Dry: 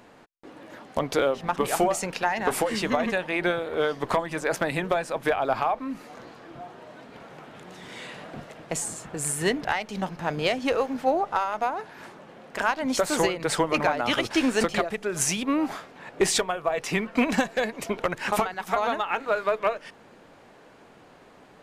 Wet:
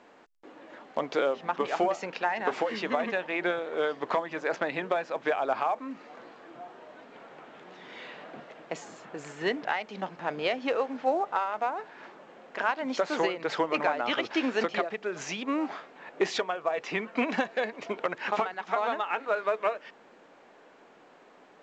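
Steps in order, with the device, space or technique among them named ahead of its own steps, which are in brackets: telephone (band-pass 270–3600 Hz; trim -3 dB; A-law 128 kbps 16 kHz)

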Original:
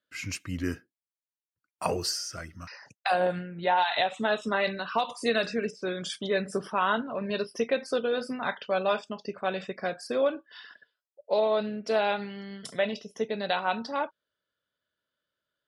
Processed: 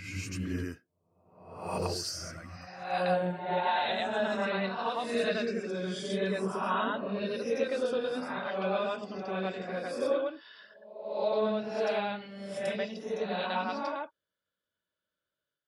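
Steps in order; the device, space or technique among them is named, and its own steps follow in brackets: reverse reverb (reverse; reverberation RT60 0.85 s, pre-delay 78 ms, DRR -3.5 dB; reverse); trim -8.5 dB

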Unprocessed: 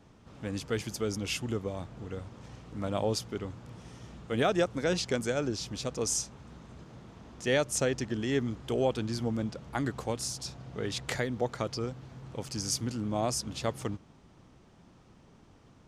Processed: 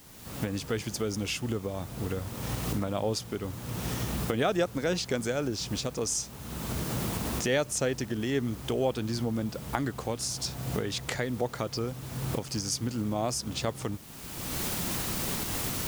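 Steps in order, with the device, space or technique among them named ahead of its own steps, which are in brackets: cheap recorder with automatic gain (white noise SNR 22 dB; recorder AGC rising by 30 dB/s)

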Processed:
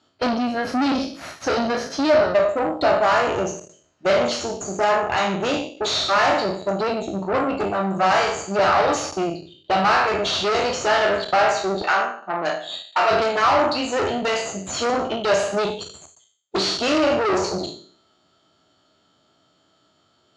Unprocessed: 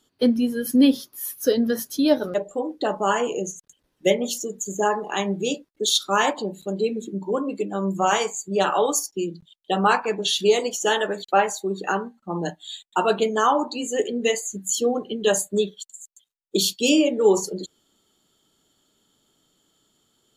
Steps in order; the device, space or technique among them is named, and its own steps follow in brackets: spectral sustain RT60 0.56 s; guitar amplifier (valve stage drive 26 dB, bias 0.75; tone controls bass -1 dB, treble +10 dB; cabinet simulation 79–4200 Hz, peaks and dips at 86 Hz +7 dB, 220 Hz -4 dB, 450 Hz -5 dB, 650 Hz +9 dB, 1.3 kHz +6 dB, 3.4 kHz -9 dB); 11.82–13.11 s: frequency weighting A; trim +8.5 dB

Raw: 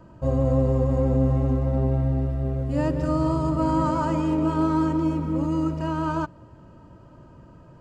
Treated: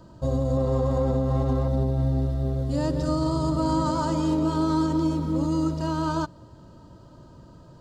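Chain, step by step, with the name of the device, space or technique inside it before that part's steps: 0.57–1.68 s: FFT filter 280 Hz 0 dB, 1.2 kHz +8 dB, 6.9 kHz -1 dB; over-bright horn tweeter (resonant high shelf 3.1 kHz +6.5 dB, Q 3; peak limiter -15.5 dBFS, peak gain reduction 6.5 dB)

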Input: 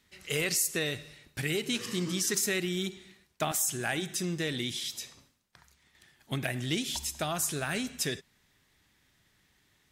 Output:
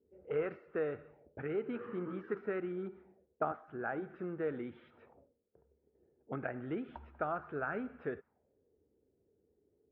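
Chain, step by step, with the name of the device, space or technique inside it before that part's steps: 2.71–4.11 s: dynamic bell 2.5 kHz, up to -5 dB, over -46 dBFS, Q 1.1; envelope filter bass rig (touch-sensitive low-pass 410–1300 Hz up, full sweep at -35 dBFS; cabinet simulation 73–2300 Hz, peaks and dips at 77 Hz +4 dB, 120 Hz -8 dB, 170 Hz -7 dB, 470 Hz +7 dB, 1.1 kHz -9 dB, 1.9 kHz -7 dB); trim -5.5 dB

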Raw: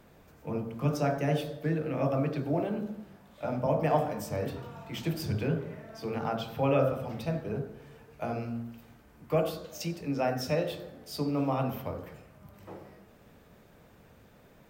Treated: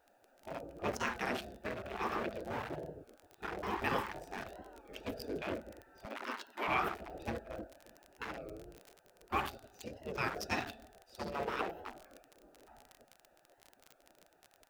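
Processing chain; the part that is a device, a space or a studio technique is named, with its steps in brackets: local Wiener filter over 41 samples; 6.05–6.70 s: steep high-pass 260 Hz 72 dB/octave; spectral gate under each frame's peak -15 dB weak; warped LP (warped record 33 1/3 rpm, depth 160 cents; crackle 34 per s -46 dBFS; white noise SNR 42 dB); trim +6 dB

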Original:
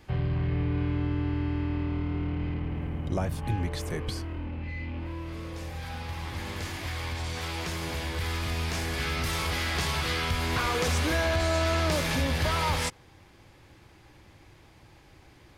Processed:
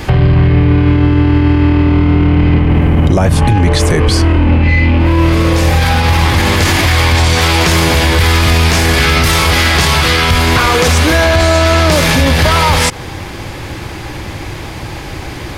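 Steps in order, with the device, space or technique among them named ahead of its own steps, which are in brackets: loud club master (compression 2:1, threshold -32 dBFS, peak gain reduction 5.5 dB; hard clipper -23 dBFS, distortion -48 dB; loudness maximiser +31.5 dB); 3.29–4.83 s: low-pass 11 kHz 24 dB/octave; trim -1 dB

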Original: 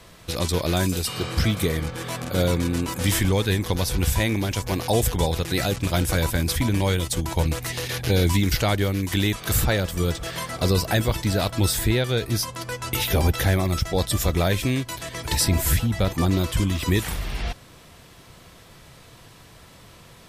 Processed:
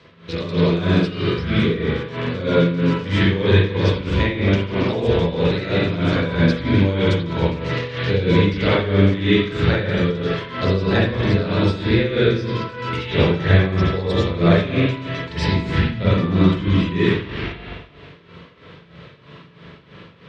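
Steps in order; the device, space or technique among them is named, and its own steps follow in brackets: combo amplifier with spring reverb and tremolo (spring tank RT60 1.3 s, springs 41/53 ms, chirp 50 ms, DRR -9 dB; tremolo 3.1 Hz, depth 72%; cabinet simulation 97–4500 Hz, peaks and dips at 160 Hz +4 dB, 430 Hz +5 dB, 760 Hz -10 dB); trim -1 dB

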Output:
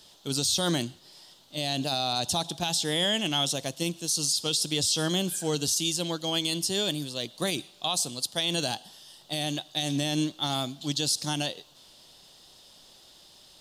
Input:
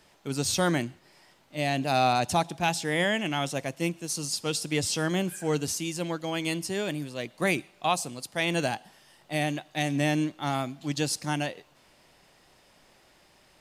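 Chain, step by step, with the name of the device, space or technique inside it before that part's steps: over-bright horn tweeter (resonant high shelf 2.8 kHz +7.5 dB, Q 3; peak limiter -16 dBFS, peak gain reduction 9 dB)

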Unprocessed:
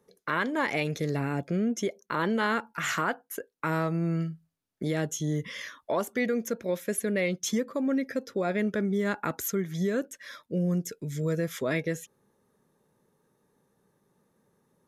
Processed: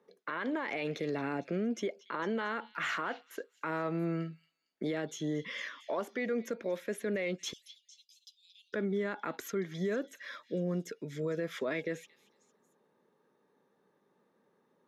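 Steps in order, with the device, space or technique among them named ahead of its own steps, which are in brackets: DJ mixer with the lows and highs turned down (three-band isolator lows -21 dB, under 200 Hz, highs -17 dB, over 4.4 kHz; peak limiter -25.5 dBFS, peak gain reduction 10.5 dB); 7.53–8.73 s: steep high-pass 2.9 kHz 96 dB/octave; repeats whose band climbs or falls 228 ms, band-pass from 3.7 kHz, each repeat 0.7 oct, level -12 dB

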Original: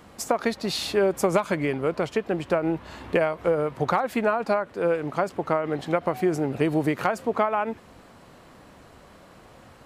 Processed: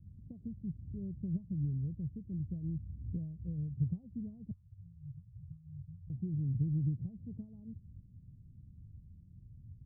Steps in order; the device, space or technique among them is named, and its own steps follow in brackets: 4.51–6.10 s: elliptic band-stop 120–1200 Hz, stop band 40 dB; the neighbour's flat through the wall (low-pass 150 Hz 24 dB/octave; peaking EQ 95 Hz +6 dB 0.8 oct); trim +1 dB

